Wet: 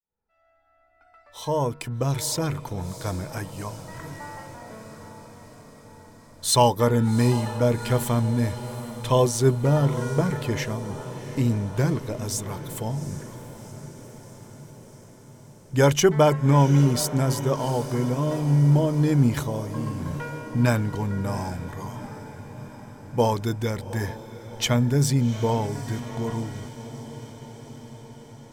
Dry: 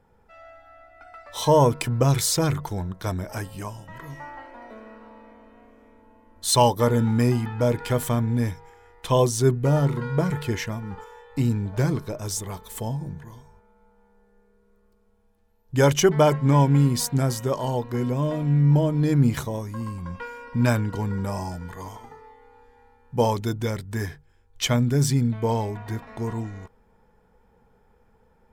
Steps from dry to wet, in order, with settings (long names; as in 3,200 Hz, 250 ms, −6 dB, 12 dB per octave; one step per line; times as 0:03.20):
fade in at the beginning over 3.78 s
feedback delay with all-pass diffusion 768 ms, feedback 66%, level −14 dB